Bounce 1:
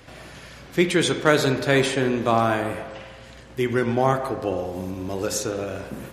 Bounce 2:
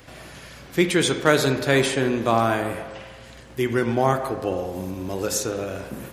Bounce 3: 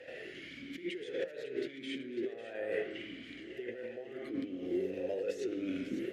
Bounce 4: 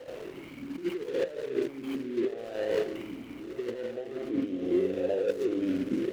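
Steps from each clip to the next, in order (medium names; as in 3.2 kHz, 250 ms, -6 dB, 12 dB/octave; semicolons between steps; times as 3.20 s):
treble shelf 11 kHz +8.5 dB
compressor with a negative ratio -31 dBFS, ratio -1; on a send: two-band feedback delay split 1.5 kHz, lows 385 ms, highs 549 ms, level -10.5 dB; on the sum: talking filter e-i 0.78 Hz; trim +1.5 dB
median filter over 25 samples; trim +8 dB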